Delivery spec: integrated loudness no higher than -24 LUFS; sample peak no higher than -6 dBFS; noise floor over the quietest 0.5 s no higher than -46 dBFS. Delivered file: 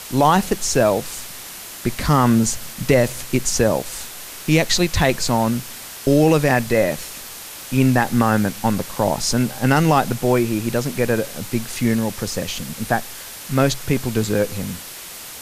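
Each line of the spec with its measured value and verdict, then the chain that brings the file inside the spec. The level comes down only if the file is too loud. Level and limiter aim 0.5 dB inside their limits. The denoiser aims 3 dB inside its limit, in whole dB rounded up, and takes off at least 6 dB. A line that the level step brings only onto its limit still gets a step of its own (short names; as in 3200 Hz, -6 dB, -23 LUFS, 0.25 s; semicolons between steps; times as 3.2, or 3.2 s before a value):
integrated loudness -19.5 LUFS: fail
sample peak -4.0 dBFS: fail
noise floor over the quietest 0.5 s -35 dBFS: fail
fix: denoiser 9 dB, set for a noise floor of -35 dBFS; gain -5 dB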